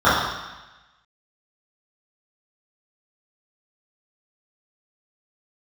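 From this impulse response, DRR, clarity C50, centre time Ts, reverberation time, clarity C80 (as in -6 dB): -14.0 dB, 0.5 dB, 76 ms, 1.1 s, 3.0 dB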